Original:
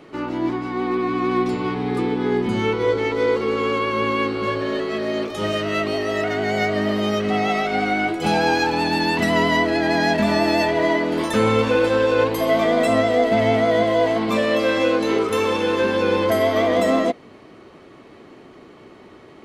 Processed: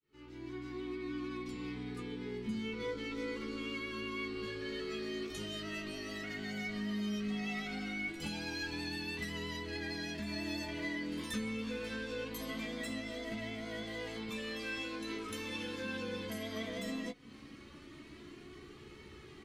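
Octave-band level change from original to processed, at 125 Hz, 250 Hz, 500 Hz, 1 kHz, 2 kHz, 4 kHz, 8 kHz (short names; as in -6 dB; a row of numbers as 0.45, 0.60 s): -18.0, -17.5, -24.5, -27.0, -17.0, -14.5, -13.0 dB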